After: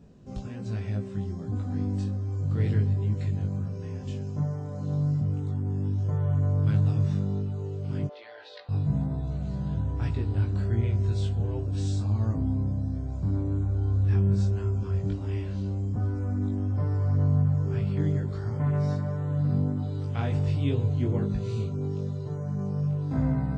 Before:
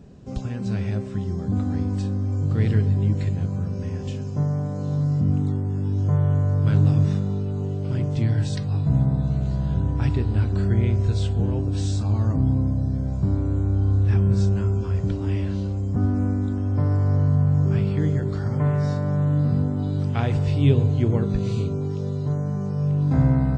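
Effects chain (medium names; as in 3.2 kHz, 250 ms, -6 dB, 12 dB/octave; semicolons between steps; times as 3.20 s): 8.07–8.69 s: elliptic band-pass 520–4100 Hz, stop band 50 dB; chorus 1.3 Hz, delay 18 ms, depth 2.6 ms; trim -3.5 dB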